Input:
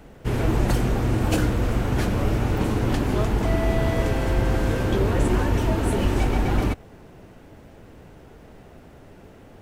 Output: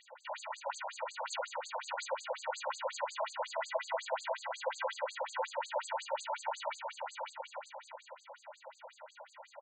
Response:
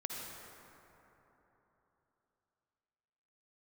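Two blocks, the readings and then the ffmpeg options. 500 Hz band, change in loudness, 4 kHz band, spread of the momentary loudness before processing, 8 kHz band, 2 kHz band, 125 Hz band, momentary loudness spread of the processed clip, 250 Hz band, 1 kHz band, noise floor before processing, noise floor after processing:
−12.0 dB, −16.0 dB, −8.0 dB, 2 LU, −8.0 dB, −9.5 dB, below −40 dB, 16 LU, below −40 dB, −6.5 dB, −47 dBFS, −64 dBFS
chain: -filter_complex "[0:a]aecho=1:1:2.1:0.6,alimiter=limit=-17.5dB:level=0:latency=1:release=35,asuperstop=centerf=5400:order=20:qfactor=4.3,acompressor=threshold=-24dB:ratio=6,equalizer=frequency=250:width=0.43:gain=9.5,asplit=2[link_01][link_02];[link_02]aecho=0:1:560|952|1226|1418|1553:0.631|0.398|0.251|0.158|0.1[link_03];[link_01][link_03]amix=inputs=2:normalize=0,crystalizer=i=1.5:c=0,afftfilt=real='re*between(b*sr/1024,710*pow(6100/710,0.5+0.5*sin(2*PI*5.5*pts/sr))/1.41,710*pow(6100/710,0.5+0.5*sin(2*PI*5.5*pts/sr))*1.41)':imag='im*between(b*sr/1024,710*pow(6100/710,0.5+0.5*sin(2*PI*5.5*pts/sr))/1.41,710*pow(6100/710,0.5+0.5*sin(2*PI*5.5*pts/sr))*1.41)':win_size=1024:overlap=0.75"

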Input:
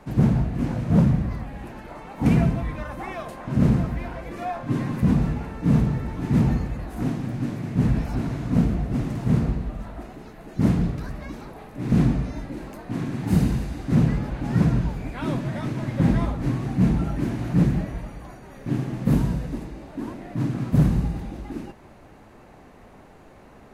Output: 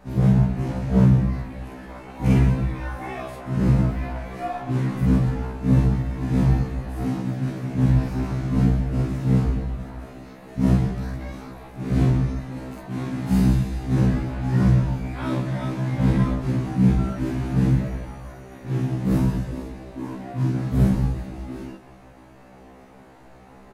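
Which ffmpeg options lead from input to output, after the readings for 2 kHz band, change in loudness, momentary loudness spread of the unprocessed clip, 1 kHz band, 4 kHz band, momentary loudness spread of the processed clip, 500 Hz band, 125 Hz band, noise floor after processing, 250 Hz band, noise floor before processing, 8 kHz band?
+0.5 dB, +1.5 dB, 16 LU, +1.0 dB, +1.0 dB, 16 LU, +1.0 dB, +2.0 dB, −47 dBFS, +0.5 dB, −48 dBFS, can't be measured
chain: -filter_complex "[0:a]asplit=2[link_01][link_02];[link_02]aecho=0:1:46.65|177.8:1|0.282[link_03];[link_01][link_03]amix=inputs=2:normalize=0,afftfilt=real='re*1.73*eq(mod(b,3),0)':imag='im*1.73*eq(mod(b,3),0)':win_size=2048:overlap=0.75"

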